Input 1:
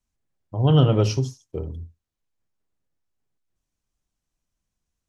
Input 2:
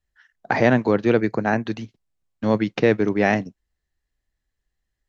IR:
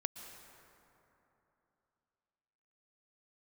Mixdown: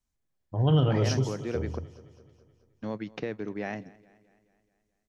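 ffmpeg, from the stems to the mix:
-filter_complex "[0:a]bandreject=f=2700:w=19,volume=0.75,asplit=2[s0][s1];[s1]volume=0.141[s2];[1:a]acompressor=threshold=0.112:ratio=3,adelay=400,volume=0.266,asplit=3[s3][s4][s5];[s3]atrim=end=1.79,asetpts=PTS-STARTPTS,afade=t=out:st=1.786:d=0.004:c=hsin[s6];[s4]atrim=start=1.79:end=2.29,asetpts=PTS-STARTPTS,volume=0[s7];[s5]atrim=start=2.29,asetpts=PTS-STARTPTS,afade=t=in:d=0.004:c=hsin[s8];[s6][s7][s8]concat=n=3:v=0:a=1,asplit=2[s9][s10];[s10]volume=0.075[s11];[s2][s11]amix=inputs=2:normalize=0,aecho=0:1:214|428|642|856|1070|1284|1498|1712:1|0.55|0.303|0.166|0.0915|0.0503|0.0277|0.0152[s12];[s0][s9][s12]amix=inputs=3:normalize=0,alimiter=limit=0.168:level=0:latency=1:release=40"

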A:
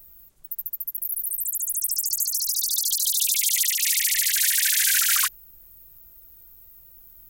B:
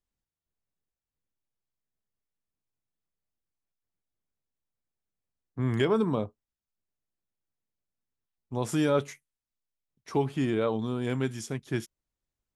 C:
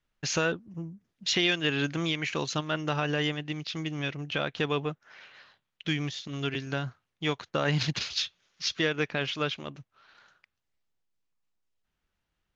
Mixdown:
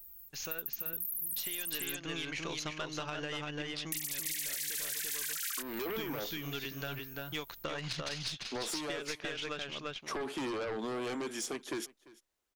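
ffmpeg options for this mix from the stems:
-filter_complex "[0:a]volume=0.944,asplit=3[s0][s1][s2];[s0]atrim=end=1.62,asetpts=PTS-STARTPTS,afade=t=out:st=1.616:d=0.004:c=hsin[s3];[s1]atrim=start=1.62:end=3.92,asetpts=PTS-STARTPTS,volume=0[s4];[s2]atrim=start=3.92,asetpts=PTS-STARTPTS,afade=t=in:d=0.004:c=hsin[s5];[s3][s4][s5]concat=n=3:v=0:a=1,asplit=2[s6][s7];[s7]volume=0.631[s8];[1:a]highpass=f=300:w=0.5412,highpass=f=300:w=1.3066,alimiter=level_in=1.33:limit=0.0631:level=0:latency=1:release=52,volume=0.75,aeval=exprs='0.0473*sin(PI/2*2*val(0)/0.0473)':c=same,volume=0.668,asplit=3[s9][s10][s11];[s10]volume=0.0668[s12];[2:a]equalizer=f=130:w=0.56:g=-5.5,dynaudnorm=f=140:g=13:m=2.99,aeval=exprs='0.668*(cos(1*acos(clip(val(0)/0.668,-1,1)))-cos(1*PI/2))+0.0473*(cos(6*acos(clip(val(0)/0.668,-1,1)))-cos(6*PI/2))':c=same,adelay=100,volume=0.2,asplit=2[s13][s14];[s14]volume=0.668[s15];[s11]apad=whole_len=321852[s16];[s6][s16]sidechaingate=range=0.355:threshold=0.00562:ratio=16:detection=peak[s17];[s17][s13]amix=inputs=2:normalize=0,highshelf=f=5500:g=7,acompressor=threshold=0.0398:ratio=6,volume=1[s18];[s8][s12][s15]amix=inputs=3:normalize=0,aecho=0:1:343:1[s19];[s9][s18][s19]amix=inputs=3:normalize=0,acompressor=threshold=0.02:ratio=12"

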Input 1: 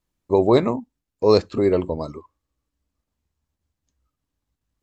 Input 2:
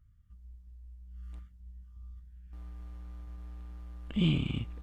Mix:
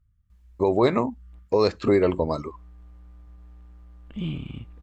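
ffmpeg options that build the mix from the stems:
-filter_complex "[0:a]equalizer=f=1800:w=0.84:g=6.5,adelay=300,volume=1.19[s0];[1:a]highshelf=f=4100:g=-9.5,volume=0.708[s1];[s0][s1]amix=inputs=2:normalize=0,alimiter=limit=0.316:level=0:latency=1:release=183"

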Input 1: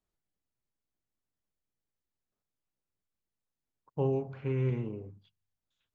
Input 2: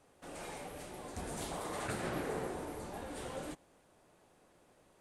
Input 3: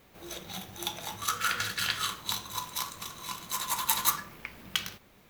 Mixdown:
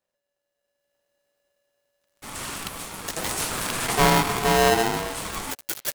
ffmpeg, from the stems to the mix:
-filter_complex "[0:a]aeval=exprs='clip(val(0),-1,0.0282)':c=same,volume=1.41[s0];[1:a]highshelf=f=2500:g=9,aeval=exprs='sgn(val(0))*max(abs(val(0))-0.00141,0)':c=same,adelay=2000,volume=1.06[s1];[2:a]bandreject=f=84.42:t=h:w=4,bandreject=f=168.84:t=h:w=4,bandreject=f=253.26:t=h:w=4,bandreject=f=337.68:t=h:w=4,bandreject=f=422.1:t=h:w=4,bandreject=f=506.52:t=h:w=4,bandreject=f=590.94:t=h:w=4,bandreject=f=675.36:t=h:w=4,bandreject=f=759.78:t=h:w=4,bandreject=f=844.2:t=h:w=4,bandreject=f=928.62:t=h:w=4,bandreject=f=1013.04:t=h:w=4,bandreject=f=1097.46:t=h:w=4,bandreject=f=1181.88:t=h:w=4,bandreject=f=1266.3:t=h:w=4,bandreject=f=1350.72:t=h:w=4,bandreject=f=1435.14:t=h:w=4,bandreject=f=1519.56:t=h:w=4,bandreject=f=1603.98:t=h:w=4,bandreject=f=1688.4:t=h:w=4,bandreject=f=1772.82:t=h:w=4,bandreject=f=1857.24:t=h:w=4,bandreject=f=1941.66:t=h:w=4,bandreject=f=2026.08:t=h:w=4,bandreject=f=2110.5:t=h:w=4,bandreject=f=2194.92:t=h:w=4,bandreject=f=2279.34:t=h:w=4,bandreject=f=2363.76:t=h:w=4,bandreject=f=2448.18:t=h:w=4,bandreject=f=2532.6:t=h:w=4,bandreject=f=2617.02:t=h:w=4,acrusher=bits=3:mix=0:aa=0.000001,adelay=1800,volume=0.224[s2];[s0][s1][s2]amix=inputs=3:normalize=0,dynaudnorm=f=310:g=5:m=3.16,aeval=exprs='val(0)*sgn(sin(2*PI*570*n/s))':c=same"

